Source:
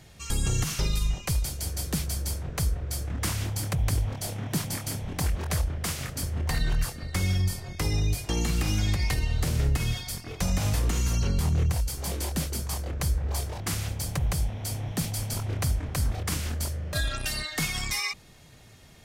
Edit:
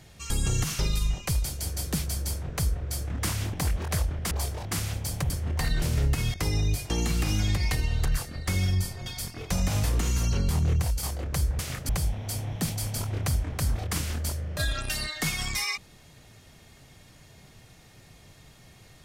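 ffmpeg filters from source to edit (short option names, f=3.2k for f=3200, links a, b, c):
-filter_complex "[0:a]asplit=11[a][b][c][d][e][f][g][h][i][j][k];[a]atrim=end=3.532[l];[b]atrim=start=5.118:end=5.902[m];[c]atrim=start=13.258:end=14.252[n];[d]atrim=start=6.198:end=6.722[o];[e]atrim=start=9.438:end=9.962[p];[f]atrim=start=7.728:end=9.442[q];[g]atrim=start=6.718:end=7.732[r];[h]atrim=start=9.958:end=11.932[s];[i]atrim=start=12.698:end=13.262[t];[j]atrim=start=5.898:end=6.202[u];[k]atrim=start=14.248[v];[l][m]acrossfade=d=0.004:c1=hsin:c2=hsin[w];[w][n]acrossfade=d=0.004:c1=hsin:c2=hsin[x];[x][o]acrossfade=d=0.004:c1=hsin:c2=hsin[y];[y][p]acrossfade=d=0.004:c1=hsin:c2=hsin[z];[z][q]acrossfade=d=0.004:c1=hsin:c2=hsin[aa];[aa][r]acrossfade=d=0.004:c1=hsin:c2=hsin[ab];[ab][s]acrossfade=d=0.004:c1=hsin:c2=hsin[ac];[ac][t]acrossfade=d=0.004:c1=hsin:c2=hsin[ad];[ad][u]acrossfade=d=0.004:c1=hsin:c2=hsin[ae];[ae][v]acrossfade=d=0.004:c1=hsin:c2=hsin"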